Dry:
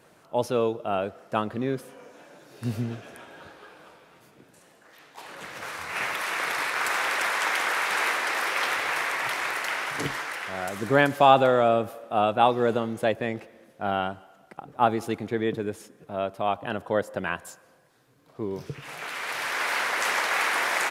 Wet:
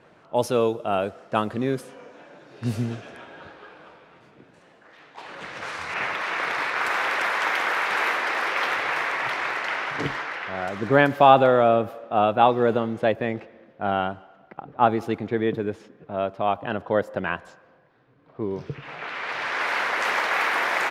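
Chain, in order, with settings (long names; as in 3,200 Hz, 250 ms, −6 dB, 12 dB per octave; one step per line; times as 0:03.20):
parametric band 9,300 Hz +3.5 dB 1.5 octaves, from 0:05.94 −13.5 dB
low-pass that shuts in the quiet parts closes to 2,900 Hz, open at −22.5 dBFS
level +3 dB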